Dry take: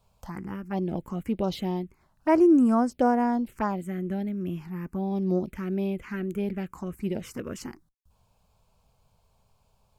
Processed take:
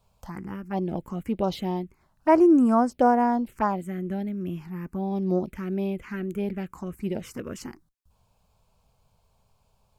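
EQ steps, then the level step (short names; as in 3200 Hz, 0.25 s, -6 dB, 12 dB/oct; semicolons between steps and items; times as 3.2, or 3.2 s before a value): dynamic EQ 860 Hz, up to +5 dB, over -35 dBFS, Q 0.87; 0.0 dB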